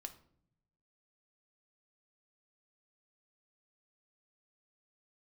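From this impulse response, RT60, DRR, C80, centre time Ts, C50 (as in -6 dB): 0.65 s, 6.0 dB, 17.5 dB, 8 ms, 13.5 dB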